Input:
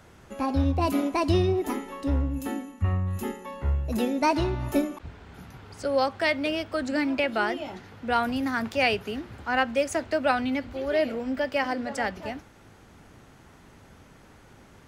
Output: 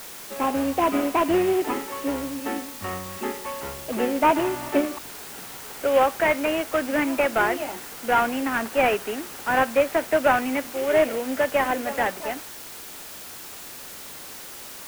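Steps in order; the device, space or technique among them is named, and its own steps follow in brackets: army field radio (band-pass 340–2900 Hz; CVSD coder 16 kbps; white noise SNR 15 dB); trim +6.5 dB

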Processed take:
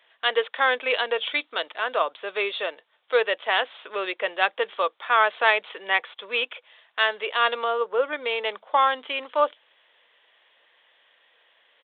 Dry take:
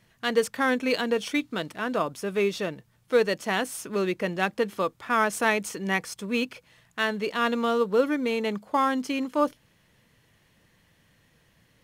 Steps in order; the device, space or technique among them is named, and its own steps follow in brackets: 7.64–8.13 s: distance through air 430 m; musical greeting card (resampled via 8 kHz; high-pass 520 Hz 24 dB/octave; peaking EQ 3.4 kHz +6 dB 0.4 oct); trim +4.5 dB

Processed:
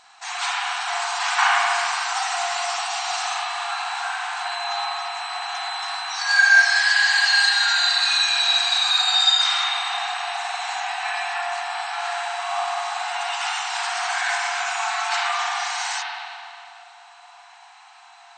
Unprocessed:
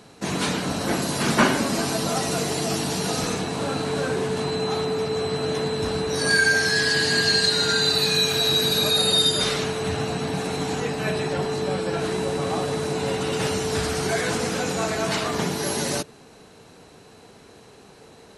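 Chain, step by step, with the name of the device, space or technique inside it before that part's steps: FFT band-pass 680–8700 Hz; dub delay into a spring reverb (filtered feedback delay 300 ms, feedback 83%, level -22.5 dB; spring tank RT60 2.3 s, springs 37/47 ms, chirp 75 ms, DRR -4.5 dB)

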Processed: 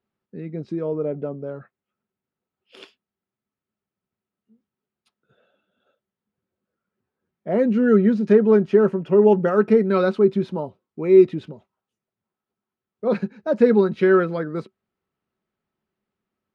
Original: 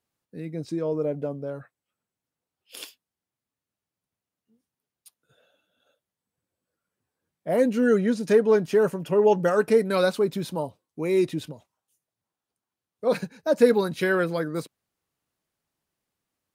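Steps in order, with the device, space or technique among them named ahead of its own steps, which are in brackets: inside a cardboard box (low-pass 2.8 kHz 12 dB/octave; small resonant body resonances 210/380/1300 Hz, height 11 dB, ringing for 90 ms)

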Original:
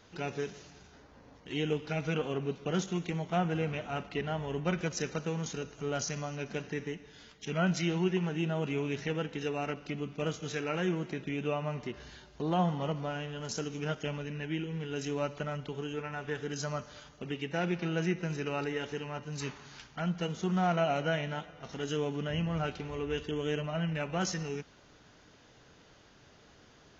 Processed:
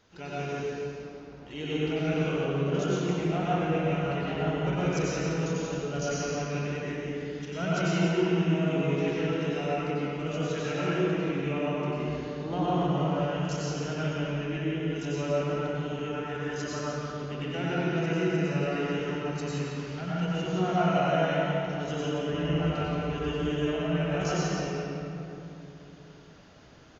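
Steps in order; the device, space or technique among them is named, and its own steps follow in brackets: cave (delay 173 ms -8 dB; reverberation RT60 3.0 s, pre-delay 88 ms, DRR -8 dB); trim -5 dB

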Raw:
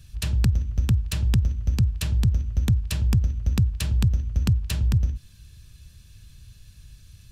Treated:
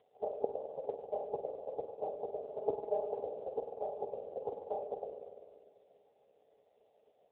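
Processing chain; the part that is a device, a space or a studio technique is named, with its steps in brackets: 2.34–3.12 s: comb 4.8 ms, depth 77%; spring tank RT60 2.1 s, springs 49 ms, chirp 20 ms, DRR 4.5 dB; FFT band-pass 400–850 Hz; telephone (band-pass 270–3100 Hz; trim +14.5 dB; AMR-NB 5.9 kbps 8 kHz)

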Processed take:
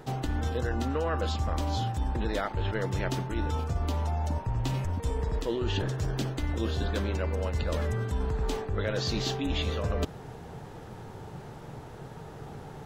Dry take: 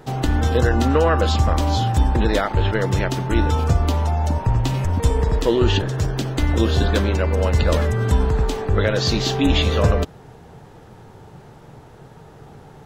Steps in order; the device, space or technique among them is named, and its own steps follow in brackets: compression on the reversed sound (reverse; compression 6:1, threshold -27 dBFS, peak gain reduction 15.5 dB; reverse)

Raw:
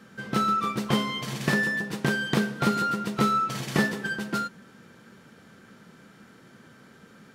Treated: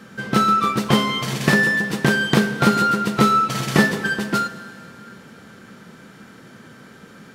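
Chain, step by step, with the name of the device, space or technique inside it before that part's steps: saturated reverb return (on a send at -12.5 dB: reverberation RT60 2.7 s, pre-delay 24 ms + saturation -21.5 dBFS, distortion -15 dB); on the sum: trim +8 dB

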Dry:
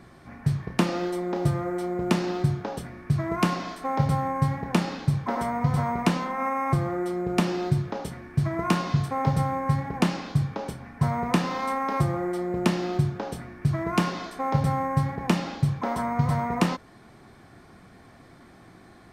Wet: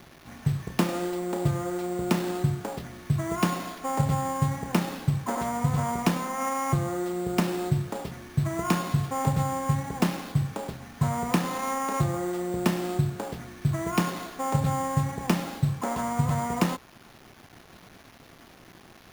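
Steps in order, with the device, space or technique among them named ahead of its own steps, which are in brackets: early 8-bit sampler (sample-rate reducer 8 kHz, jitter 0%; bit crusher 8-bit); trim -1.5 dB

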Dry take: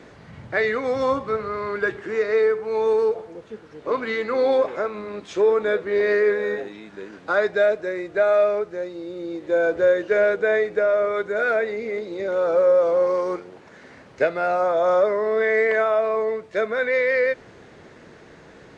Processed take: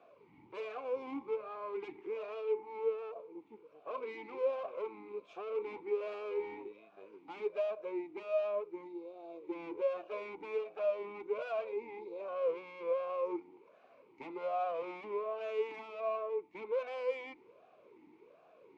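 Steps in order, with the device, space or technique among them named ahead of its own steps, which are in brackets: talk box (valve stage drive 26 dB, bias 0.75; talking filter a-u 1.3 Hz)

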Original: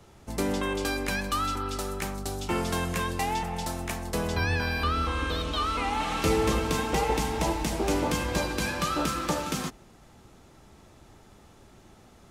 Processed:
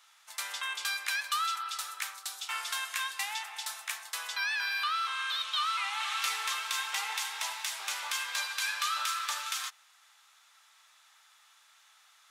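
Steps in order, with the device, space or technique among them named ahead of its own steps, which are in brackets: headphones lying on a table (high-pass 1.2 kHz 24 dB/octave; peaking EQ 3.6 kHz +4.5 dB 0.28 oct)

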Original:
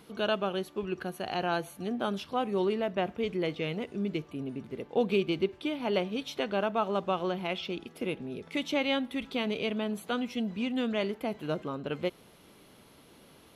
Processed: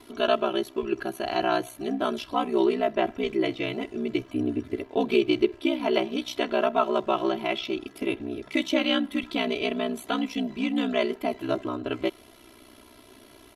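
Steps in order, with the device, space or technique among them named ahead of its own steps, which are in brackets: 4.21–4.80 s: comb 7.4 ms, depth 67%; ring-modulated robot voice (ring modulator 31 Hz; comb 3 ms, depth 90%); trim +5.5 dB

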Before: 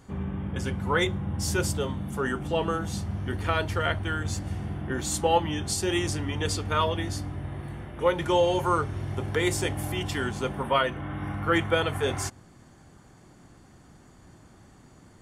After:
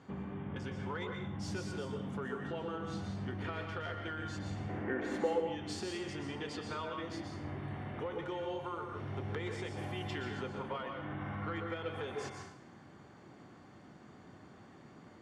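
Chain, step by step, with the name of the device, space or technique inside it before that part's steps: AM radio (band-pass 140–3800 Hz; compression 8:1, threshold -36 dBFS, peak gain reduction 18.5 dB; saturation -27 dBFS, distortion -25 dB); 4.69–5.33 s: graphic EQ 125/250/500/2000/4000/8000 Hz -12/+6/+9/+11/-9/-10 dB; plate-style reverb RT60 0.63 s, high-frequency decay 0.95×, pre-delay 110 ms, DRR 2.5 dB; trim -2 dB

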